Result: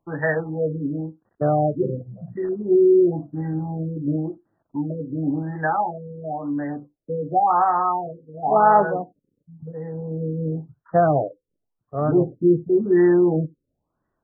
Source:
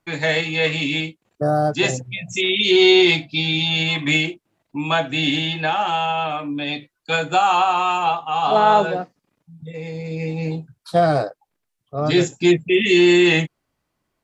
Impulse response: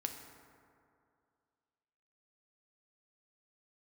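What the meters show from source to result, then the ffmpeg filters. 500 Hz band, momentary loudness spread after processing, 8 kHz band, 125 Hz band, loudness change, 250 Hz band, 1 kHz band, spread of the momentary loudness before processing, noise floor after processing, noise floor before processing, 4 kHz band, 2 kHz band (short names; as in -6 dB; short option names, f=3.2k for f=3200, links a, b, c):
-1.0 dB, 16 LU, n/a, -0.5 dB, -3.5 dB, -1.0 dB, -2.0 dB, 15 LU, -78 dBFS, -77 dBFS, under -40 dB, -12.0 dB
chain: -filter_complex "[0:a]asplit=2[a][b];[1:a]atrim=start_sample=2205,atrim=end_sample=3969[c];[b][c]afir=irnorm=-1:irlink=0,volume=-11.5dB[d];[a][d]amix=inputs=2:normalize=0,afftfilt=real='re*lt(b*sr/1024,530*pow(2000/530,0.5+0.5*sin(2*PI*0.94*pts/sr)))':imag='im*lt(b*sr/1024,530*pow(2000/530,0.5+0.5*sin(2*PI*0.94*pts/sr)))':win_size=1024:overlap=0.75,volume=-2.5dB"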